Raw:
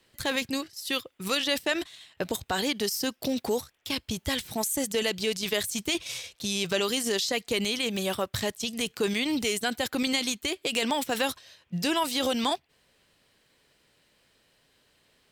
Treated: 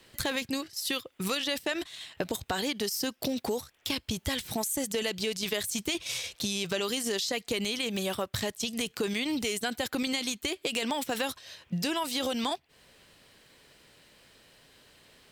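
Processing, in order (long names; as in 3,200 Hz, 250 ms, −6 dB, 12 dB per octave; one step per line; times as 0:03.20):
downward compressor 3 to 1, threshold −39 dBFS, peak gain reduction 13 dB
level +7.5 dB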